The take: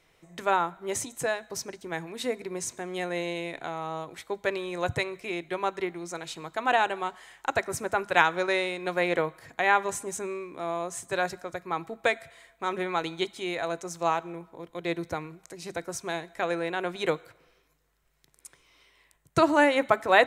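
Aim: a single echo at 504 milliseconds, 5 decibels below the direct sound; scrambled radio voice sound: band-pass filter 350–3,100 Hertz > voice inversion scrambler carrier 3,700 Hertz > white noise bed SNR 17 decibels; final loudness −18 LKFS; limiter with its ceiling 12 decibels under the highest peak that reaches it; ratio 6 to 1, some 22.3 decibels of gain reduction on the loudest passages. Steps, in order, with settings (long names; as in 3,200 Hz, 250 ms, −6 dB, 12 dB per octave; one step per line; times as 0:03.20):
downward compressor 6 to 1, threshold −40 dBFS
brickwall limiter −32.5 dBFS
band-pass filter 350–3,100 Hz
single-tap delay 504 ms −5 dB
voice inversion scrambler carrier 3,700 Hz
white noise bed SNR 17 dB
level +25.5 dB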